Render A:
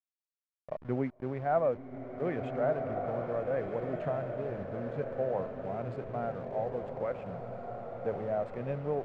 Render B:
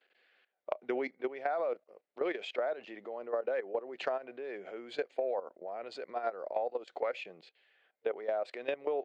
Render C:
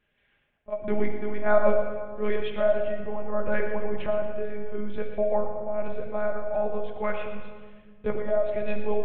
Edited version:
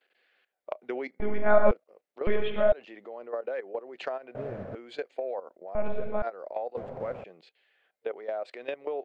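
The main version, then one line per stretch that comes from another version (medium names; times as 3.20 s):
B
1.20–1.71 s: from C
2.27–2.72 s: from C
4.35–4.75 s: from A
5.75–6.22 s: from C
6.77–7.24 s: from A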